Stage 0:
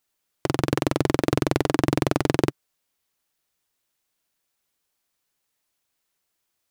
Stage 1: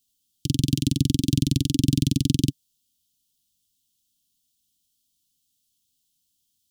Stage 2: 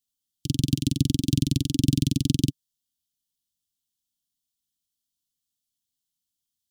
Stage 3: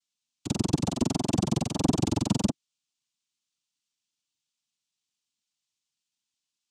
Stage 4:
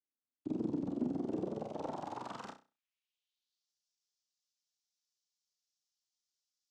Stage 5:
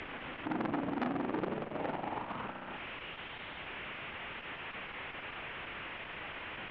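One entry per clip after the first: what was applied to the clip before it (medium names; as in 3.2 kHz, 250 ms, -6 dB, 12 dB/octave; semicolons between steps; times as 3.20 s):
Chebyshev band-stop 270–3100 Hz, order 4; trim +5.5 dB
upward expansion 1.5:1, over -39 dBFS
noise-vocoded speech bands 4; trim -2.5 dB
valve stage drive 26 dB, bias 0.65; band-pass sweep 310 Hz -> 5.4 kHz, 1.14–3.73 s; flutter echo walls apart 5.5 m, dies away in 0.3 s; trim +2 dB
one-bit delta coder 16 kbps, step -40 dBFS; distance through air 130 m; transformer saturation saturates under 1.3 kHz; trim +6 dB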